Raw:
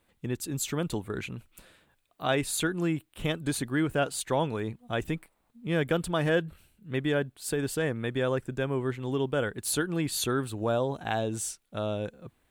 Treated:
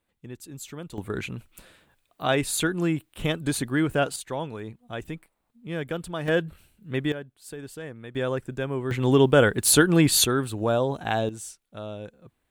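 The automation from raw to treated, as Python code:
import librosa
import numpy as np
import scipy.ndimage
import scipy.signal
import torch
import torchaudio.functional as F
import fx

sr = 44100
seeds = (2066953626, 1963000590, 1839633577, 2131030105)

y = fx.gain(x, sr, db=fx.steps((0.0, -8.0), (0.98, 3.5), (4.16, -4.0), (6.28, 2.5), (7.12, -9.0), (8.15, 0.5), (8.91, 11.0), (10.25, 4.0), (11.29, -5.0)))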